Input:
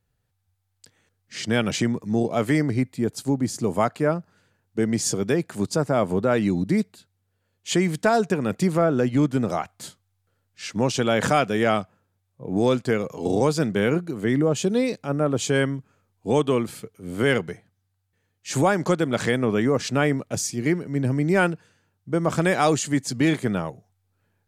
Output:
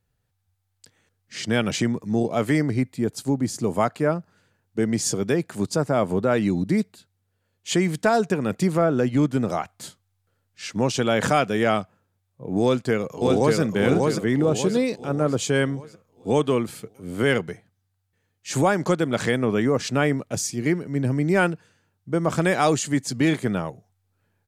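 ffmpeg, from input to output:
ffmpeg -i in.wav -filter_complex "[0:a]asplit=2[link_01][link_02];[link_02]afade=type=in:start_time=12.62:duration=0.01,afade=type=out:start_time=13.59:duration=0.01,aecho=0:1:590|1180|1770|2360|2950|3540:0.794328|0.357448|0.160851|0.0723832|0.0325724|0.0146576[link_03];[link_01][link_03]amix=inputs=2:normalize=0" out.wav

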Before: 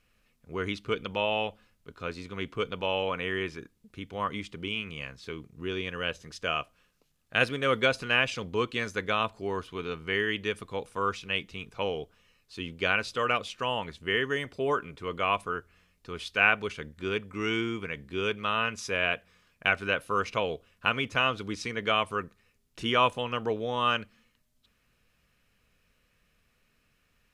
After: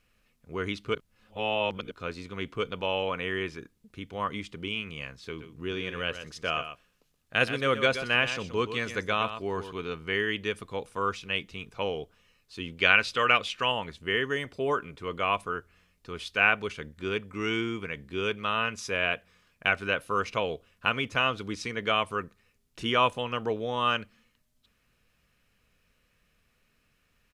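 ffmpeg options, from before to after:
ffmpeg -i in.wav -filter_complex "[0:a]asplit=3[link_01][link_02][link_03];[link_01]afade=type=out:start_time=5.38:duration=0.02[link_04];[link_02]aecho=1:1:124:0.299,afade=type=in:start_time=5.38:duration=0.02,afade=type=out:start_time=9.71:duration=0.02[link_05];[link_03]afade=type=in:start_time=9.71:duration=0.02[link_06];[link_04][link_05][link_06]amix=inputs=3:normalize=0,asettb=1/sr,asplit=3[link_07][link_08][link_09];[link_07]atrim=end=12.774[link_10];[link_08]atrim=start=12.77:end=13.72,asetpts=PTS-STARTPTS,afade=type=in:duration=0.004:curve=qsin,afade=type=out:start_time=0.946:duration=0.004:curve=qsin,equalizer=frequency=2400:width=0.66:gain=7.5[link_11];[link_09]atrim=start=13.716[link_12];[link_10][link_11]acrossfade=duration=0.004:curve1=hsin:curve2=qsin[link_13];[link_13][link_12]acrossfade=duration=0.004:curve1=qsin:curve2=hsin,asplit=3[link_14][link_15][link_16];[link_14]atrim=end=0.952[link_17];[link_15]atrim=start=0.948:end=1.912,asetpts=PTS-STARTPTS,areverse[link_18];[link_16]atrim=start=1.908[link_19];[link_17][link_18]acrossfade=duration=0.004:curve1=hsin:curve2=hsin[link_20];[link_20][link_19]acrossfade=duration=0.004:curve1=hsin:curve2=hsin" out.wav

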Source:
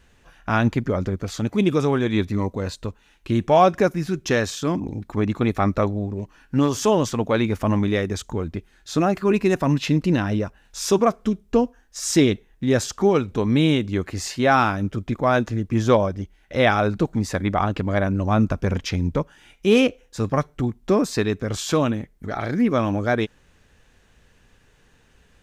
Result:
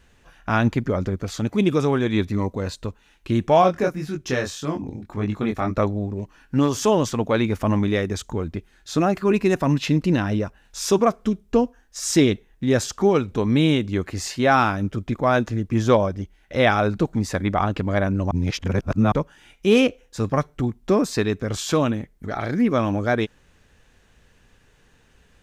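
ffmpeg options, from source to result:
ffmpeg -i in.wav -filter_complex "[0:a]asplit=3[link_01][link_02][link_03];[link_01]afade=type=out:start_time=3.61:duration=0.02[link_04];[link_02]flanger=delay=19.5:depth=4.3:speed=1.7,afade=type=in:start_time=3.61:duration=0.02,afade=type=out:start_time=5.76:duration=0.02[link_05];[link_03]afade=type=in:start_time=5.76:duration=0.02[link_06];[link_04][link_05][link_06]amix=inputs=3:normalize=0,asplit=3[link_07][link_08][link_09];[link_07]atrim=end=18.312[link_10];[link_08]atrim=start=18.308:end=19.122,asetpts=PTS-STARTPTS,areverse[link_11];[link_09]atrim=start=19.118[link_12];[link_10][link_11]acrossfade=duration=0.004:curve1=hsin:curve2=hsin[link_13];[link_13][link_12]acrossfade=duration=0.004:curve1=hsin:curve2=hsin" out.wav

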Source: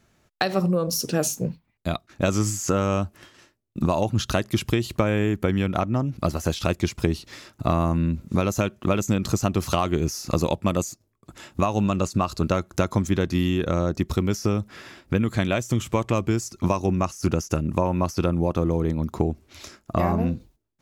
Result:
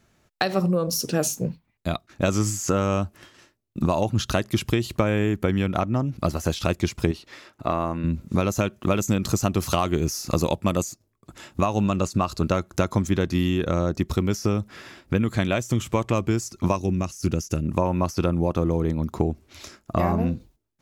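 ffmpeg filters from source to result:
ffmpeg -i in.wav -filter_complex "[0:a]asettb=1/sr,asplit=3[link_01][link_02][link_03];[link_01]atrim=end=7.114[link_04];[link_02]atrim=start=7.11:end=8.04,asetpts=PTS-STARTPTS,afade=type=in:duration=0.004:curve=qsin,afade=type=out:start_time=0.926:duration=0.004:curve=qsin,bass=frequency=250:gain=-10,treble=frequency=4000:gain=-8[link_05];[link_03]atrim=start=8.036[link_06];[link_04][link_05]acrossfade=duration=0.004:curve1=hsin:curve2=qsin[link_07];[link_07][link_06]acrossfade=duration=0.004:curve1=qsin:curve2=hsin,asettb=1/sr,asplit=3[link_08][link_09][link_10];[link_08]atrim=end=8.734[link_11];[link_09]atrim=start=8.73:end=10.83,asetpts=PTS-STARTPTS,afade=type=in:duration=0.004:curve=qsin,afade=type=out:start_time=2.096:duration=0.004:curve=qsin,highshelf=frequency=6900:gain=4.5[link_12];[link_10]atrim=start=10.826[link_13];[link_11][link_12]acrossfade=duration=0.004:curve1=hsin:curve2=qsin[link_14];[link_14][link_13]acrossfade=duration=0.004:curve1=qsin:curve2=hsin,asettb=1/sr,asplit=3[link_15][link_16][link_17];[link_15]atrim=end=16.764[link_18];[link_16]atrim=start=16.76:end=17.63,asetpts=PTS-STARTPTS,afade=type=in:duration=0.004:curve=qsin,afade=type=out:start_time=0.866:duration=0.004:curve=qsin,equalizer=frequency=960:width_type=o:width=1.7:gain=-9.5[link_19];[link_17]atrim=start=17.626[link_20];[link_18][link_19]acrossfade=duration=0.004:curve1=hsin:curve2=qsin[link_21];[link_21][link_20]acrossfade=duration=0.004:curve1=qsin:curve2=hsin" out.wav

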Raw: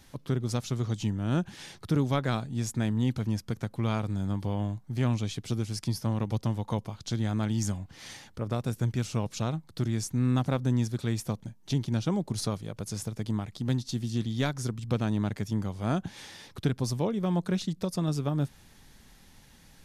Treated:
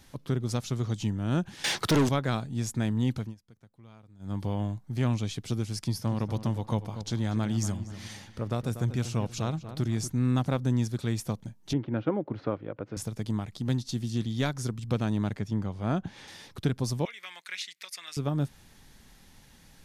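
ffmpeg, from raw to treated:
ffmpeg -i in.wav -filter_complex "[0:a]asettb=1/sr,asplit=3[link_01][link_02][link_03];[link_01]atrim=end=1.644[link_04];[link_02]atrim=start=1.64:end=2.09,asetpts=PTS-STARTPTS,afade=type=in:duration=0.004:curve=qsin,afade=type=out:start_time=0.446:duration=0.004:curve=qsin,asplit=2[link_05][link_06];[link_06]highpass=frequency=720:poles=1,volume=29dB,asoftclip=type=tanh:threshold=-16dB[link_07];[link_05][link_07]amix=inputs=2:normalize=0,lowpass=frequency=6700:poles=1,volume=-6dB[link_08];[link_03]atrim=start=2.086[link_09];[link_04][link_08]acrossfade=duration=0.004:curve1=hsin:curve2=qsin[link_10];[link_10][link_09]acrossfade=duration=0.004:curve1=qsin:curve2=hsin,asettb=1/sr,asplit=3[link_11][link_12][link_13];[link_11]atrim=end=5.754[link_14];[link_12]atrim=start=5.75:end=10.1,asetpts=PTS-STARTPTS,afade=type=in:duration=0.004:curve=qsin,afade=type=out:start_time=4.346:duration=0.004:curve=qsin,asplit=2[link_15][link_16];[link_16]adelay=240,lowpass=frequency=2200:poles=1,volume=-11dB,asplit=2[link_17][link_18];[link_18]adelay=240,lowpass=frequency=2200:poles=1,volume=0.39,asplit=2[link_19][link_20];[link_20]adelay=240,lowpass=frequency=2200:poles=1,volume=0.39,asplit=2[link_21][link_22];[link_22]adelay=240,lowpass=frequency=2200:poles=1,volume=0.39[link_23];[link_15][link_17][link_19][link_21][link_23]amix=inputs=5:normalize=0,atrim=end_sample=191835[link_24];[link_13]atrim=start=10.096[link_25];[link_14][link_24]acrossfade=duration=0.004:curve1=hsin:curve2=qsin[link_26];[link_26][link_25]acrossfade=duration=0.004:curve1=qsin:curve2=hsin,asettb=1/sr,asplit=3[link_27][link_28][link_29];[link_27]atrim=end=11.734[link_30];[link_28]atrim=start=11.73:end=12.97,asetpts=PTS-STARTPTS,afade=type=in:duration=0.004:curve=qsin,afade=type=out:start_time=1.236:duration=0.004:curve=qsin,highpass=130,equalizer=frequency=180:width_type=q:width=4:gain=-8,equalizer=frequency=310:width_type=q:width=4:gain=7,equalizer=frequency=530:width_type=q:width=4:gain=7,equalizer=frequency=1400:width_type=q:width=4:gain=4,lowpass=frequency=2400:width=0.5412,lowpass=frequency=2400:width=1.3066[link_31];[link_29]atrim=start=12.966[link_32];[link_30][link_31]acrossfade=duration=0.004:curve1=hsin:curve2=qsin[link_33];[link_33][link_32]acrossfade=duration=0.004:curve1=qsin:curve2=hsin,asettb=1/sr,asplit=3[link_34][link_35][link_36];[link_34]atrim=end=15.364[link_37];[link_35]atrim=start=15.36:end=16.28,asetpts=PTS-STARTPTS,afade=type=in:duration=0.004:curve=qsin,afade=type=out:start_time=0.916:duration=0.004:curve=qsin,aemphasis=mode=reproduction:type=50kf[link_38];[link_36]atrim=start=16.276[link_39];[link_37][link_38]acrossfade=duration=0.004:curve1=hsin:curve2=qsin[link_40];[link_40][link_39]acrossfade=duration=0.004:curve1=qsin:curve2=hsin,asettb=1/sr,asplit=3[link_41][link_42][link_43];[link_41]atrim=end=17.054[link_44];[link_42]atrim=start=17.05:end=18.17,asetpts=PTS-STARTPTS,afade=type=in:duration=0.004:curve=qsin,afade=type=out:start_time=1.116:duration=0.004:curve=qsin,highpass=frequency=2100:width_type=q:width=4.2[link_45];[link_43]atrim=start=18.166[link_46];[link_44][link_45]acrossfade=duration=0.004:curve1=hsin:curve2=qsin[link_47];[link_47][link_46]acrossfade=duration=0.004:curve1=qsin:curve2=hsin,asplit=3[link_48][link_49][link_50];[link_48]atrim=end=3.35,asetpts=PTS-STARTPTS,afade=type=out:start_time=3.16:duration=0.19:silence=0.0668344[link_51];[link_49]atrim=start=3.35:end=4.19,asetpts=PTS-STARTPTS,volume=-23.5dB[link_52];[link_50]atrim=start=4.19,asetpts=PTS-STARTPTS,afade=type=in:duration=0.19:silence=0.0668344[link_53];[link_51][link_52][link_53]concat=n=3:v=0:a=1" out.wav

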